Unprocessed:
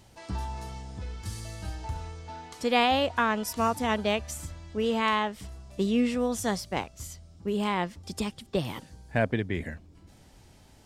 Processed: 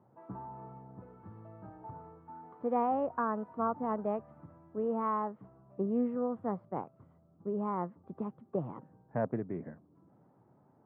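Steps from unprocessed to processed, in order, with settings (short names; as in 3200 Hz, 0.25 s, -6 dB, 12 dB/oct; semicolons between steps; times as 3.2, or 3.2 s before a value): spectral gain 2.19–2.43, 380–790 Hz -9 dB; elliptic band-pass 130–1200 Hz, stop band 60 dB; Doppler distortion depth 0.13 ms; gain -5 dB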